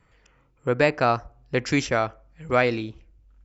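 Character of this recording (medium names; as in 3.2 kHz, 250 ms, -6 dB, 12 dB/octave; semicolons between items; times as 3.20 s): noise floor -63 dBFS; spectral tilt -4.5 dB/octave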